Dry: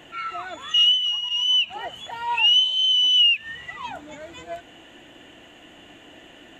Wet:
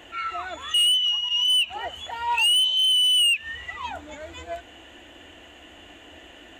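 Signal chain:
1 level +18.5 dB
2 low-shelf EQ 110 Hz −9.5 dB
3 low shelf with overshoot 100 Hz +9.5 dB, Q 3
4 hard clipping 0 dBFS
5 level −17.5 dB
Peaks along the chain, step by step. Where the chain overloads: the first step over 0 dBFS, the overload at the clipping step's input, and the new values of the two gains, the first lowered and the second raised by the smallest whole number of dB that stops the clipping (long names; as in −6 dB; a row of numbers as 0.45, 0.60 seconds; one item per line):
+8.0, +8.0, +8.0, 0.0, −17.5 dBFS
step 1, 8.0 dB
step 1 +10.5 dB, step 5 −9.5 dB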